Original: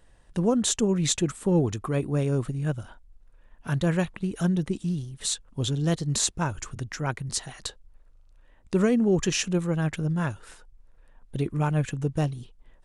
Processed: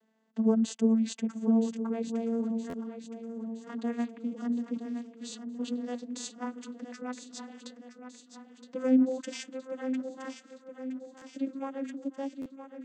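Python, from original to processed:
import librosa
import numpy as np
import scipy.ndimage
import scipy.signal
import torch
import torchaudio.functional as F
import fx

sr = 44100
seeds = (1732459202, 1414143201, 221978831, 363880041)

y = fx.vocoder_glide(x, sr, note=57, semitones=4)
y = fx.brickwall_highpass(y, sr, low_hz=160.0)
y = fx.high_shelf(y, sr, hz=5200.0, db=6.0)
y = fx.echo_feedback(y, sr, ms=968, feedback_pct=55, wet_db=-10.0)
y = fx.buffer_glitch(y, sr, at_s=(2.69, 11.17, 12.41), block=512, repeats=3)
y = y * librosa.db_to_amplitude(-5.0)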